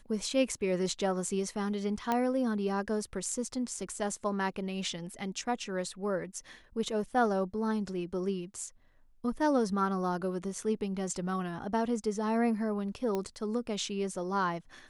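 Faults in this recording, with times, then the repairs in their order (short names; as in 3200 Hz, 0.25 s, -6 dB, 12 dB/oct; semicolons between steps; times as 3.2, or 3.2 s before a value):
2.12 pop -16 dBFS
13.15 pop -20 dBFS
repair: de-click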